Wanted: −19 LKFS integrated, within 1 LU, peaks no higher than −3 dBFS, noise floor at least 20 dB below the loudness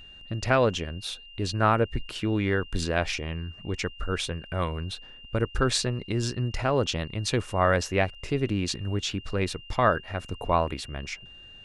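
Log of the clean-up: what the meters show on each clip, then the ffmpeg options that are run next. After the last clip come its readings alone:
interfering tone 2,800 Hz; level of the tone −46 dBFS; integrated loudness −28.0 LKFS; sample peak −7.5 dBFS; target loudness −19.0 LKFS
→ -af "bandreject=frequency=2800:width=30"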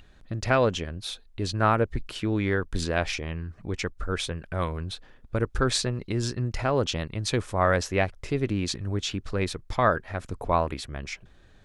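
interfering tone none found; integrated loudness −28.0 LKFS; sample peak −7.5 dBFS; target loudness −19.0 LKFS
→ -af "volume=9dB,alimiter=limit=-3dB:level=0:latency=1"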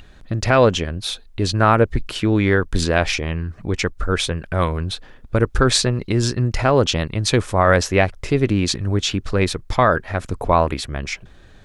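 integrated loudness −19.5 LKFS; sample peak −3.0 dBFS; background noise floor −46 dBFS

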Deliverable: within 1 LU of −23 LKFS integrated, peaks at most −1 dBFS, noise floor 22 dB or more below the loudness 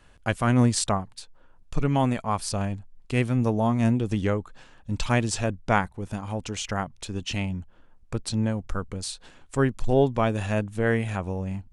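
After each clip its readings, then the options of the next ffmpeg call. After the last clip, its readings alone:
integrated loudness −26.5 LKFS; sample peak −6.5 dBFS; target loudness −23.0 LKFS
→ -af "volume=3.5dB"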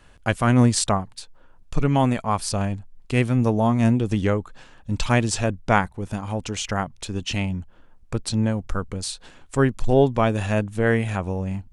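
integrated loudness −23.0 LKFS; sample peak −3.0 dBFS; background noise floor −51 dBFS

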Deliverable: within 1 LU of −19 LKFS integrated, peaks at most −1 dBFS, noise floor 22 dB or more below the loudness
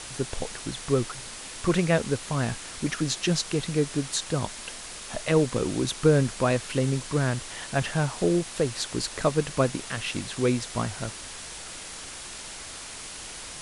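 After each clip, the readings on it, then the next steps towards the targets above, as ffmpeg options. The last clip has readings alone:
background noise floor −40 dBFS; target noise floor −50 dBFS; integrated loudness −28.0 LKFS; sample peak −8.0 dBFS; target loudness −19.0 LKFS
→ -af "afftdn=noise_reduction=10:noise_floor=-40"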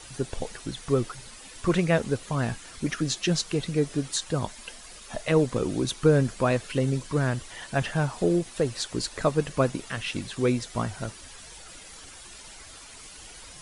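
background noise floor −46 dBFS; target noise floor −50 dBFS
→ -af "afftdn=noise_reduction=6:noise_floor=-46"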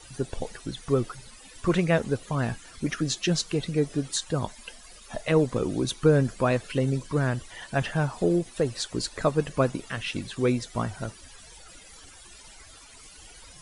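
background noise floor −49 dBFS; target noise floor −50 dBFS
→ -af "afftdn=noise_reduction=6:noise_floor=-49"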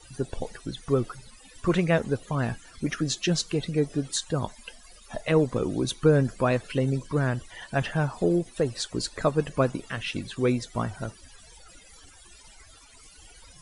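background noise floor −52 dBFS; integrated loudness −27.5 LKFS; sample peak −8.0 dBFS; target loudness −19.0 LKFS
→ -af "volume=8.5dB,alimiter=limit=-1dB:level=0:latency=1"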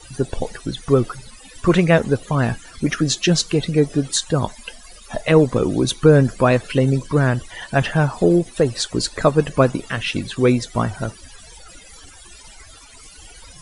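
integrated loudness −19.0 LKFS; sample peak −1.0 dBFS; background noise floor −43 dBFS

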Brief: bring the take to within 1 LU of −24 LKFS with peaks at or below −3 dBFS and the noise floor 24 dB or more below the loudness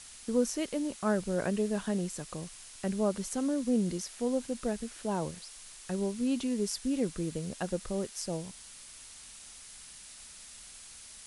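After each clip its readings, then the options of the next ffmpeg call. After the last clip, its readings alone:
background noise floor −50 dBFS; target noise floor −57 dBFS; integrated loudness −33.0 LKFS; sample peak −16.5 dBFS; target loudness −24.0 LKFS
→ -af "afftdn=noise_reduction=7:noise_floor=-50"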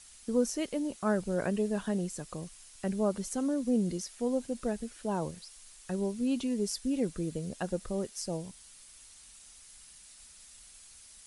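background noise floor −54 dBFS; target noise floor −57 dBFS
→ -af "afftdn=noise_reduction=6:noise_floor=-54"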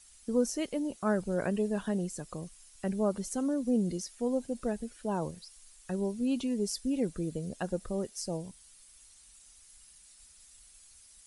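background noise floor −58 dBFS; integrated loudness −33.0 LKFS; sample peak −16.5 dBFS; target loudness −24.0 LKFS
→ -af "volume=9dB"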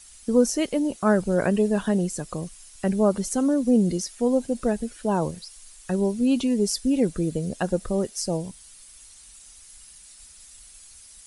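integrated loudness −24.0 LKFS; sample peak −7.5 dBFS; background noise floor −49 dBFS

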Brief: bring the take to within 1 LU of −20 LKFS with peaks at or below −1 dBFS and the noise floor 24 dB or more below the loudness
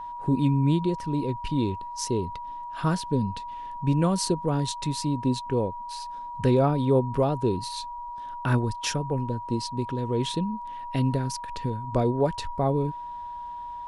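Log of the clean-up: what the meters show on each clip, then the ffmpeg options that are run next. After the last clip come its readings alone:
interfering tone 960 Hz; level of the tone −34 dBFS; integrated loudness −27.5 LKFS; sample peak −10.5 dBFS; target loudness −20.0 LKFS
→ -af "bandreject=frequency=960:width=30"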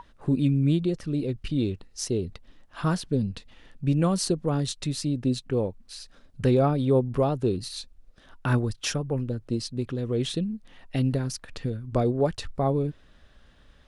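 interfering tone none found; integrated loudness −27.0 LKFS; sample peak −11.0 dBFS; target loudness −20.0 LKFS
→ -af "volume=7dB"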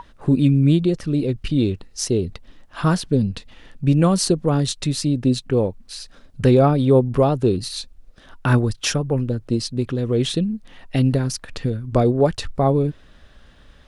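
integrated loudness −20.0 LKFS; sample peak −4.0 dBFS; background noise floor −49 dBFS

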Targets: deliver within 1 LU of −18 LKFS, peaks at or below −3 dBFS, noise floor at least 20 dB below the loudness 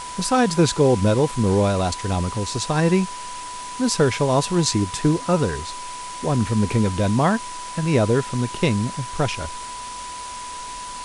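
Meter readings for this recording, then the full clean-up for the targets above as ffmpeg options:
interfering tone 990 Hz; level of the tone −32 dBFS; background noise floor −33 dBFS; target noise floor −41 dBFS; integrated loudness −21.0 LKFS; sample peak −5.0 dBFS; target loudness −18.0 LKFS
→ -af "bandreject=frequency=990:width=30"
-af "afftdn=noise_reduction=8:noise_floor=-33"
-af "volume=3dB,alimiter=limit=-3dB:level=0:latency=1"

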